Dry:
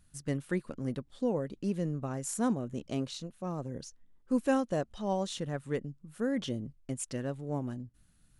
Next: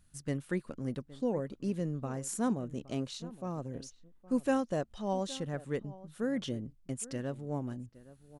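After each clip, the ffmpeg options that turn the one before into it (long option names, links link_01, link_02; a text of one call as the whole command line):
ffmpeg -i in.wav -filter_complex "[0:a]asplit=2[link_01][link_02];[link_02]adelay=816.3,volume=-18dB,highshelf=frequency=4000:gain=-18.4[link_03];[link_01][link_03]amix=inputs=2:normalize=0,volume=-1.5dB" out.wav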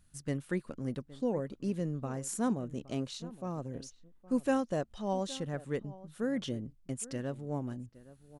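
ffmpeg -i in.wav -af anull out.wav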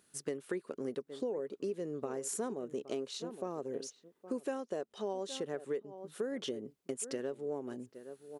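ffmpeg -i in.wav -af "highpass=310,equalizer=frequency=410:width_type=o:width=0.41:gain=12,acompressor=threshold=-39dB:ratio=6,volume=4.5dB" out.wav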